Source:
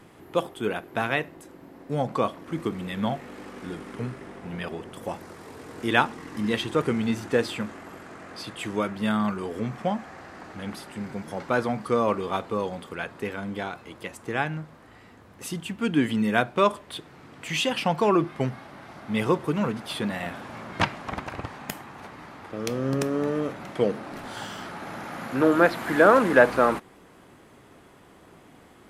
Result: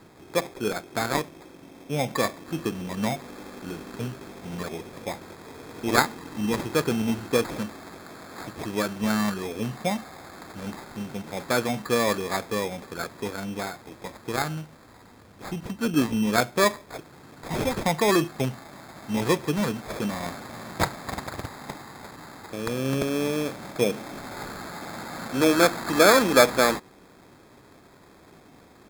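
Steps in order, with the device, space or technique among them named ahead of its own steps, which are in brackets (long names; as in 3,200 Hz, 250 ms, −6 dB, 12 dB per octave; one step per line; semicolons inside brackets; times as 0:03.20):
crushed at another speed (tape speed factor 0.8×; decimation without filtering 19×; tape speed factor 1.25×)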